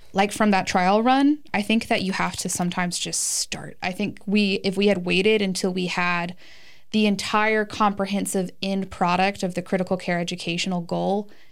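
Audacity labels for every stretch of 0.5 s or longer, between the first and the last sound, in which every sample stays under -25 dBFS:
6.290000	6.940000	silence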